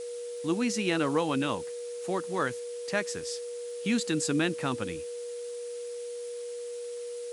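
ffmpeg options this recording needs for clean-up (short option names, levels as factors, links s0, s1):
-af "adeclick=t=4,bandreject=f=480:w=30,afftdn=nr=30:nf=-38"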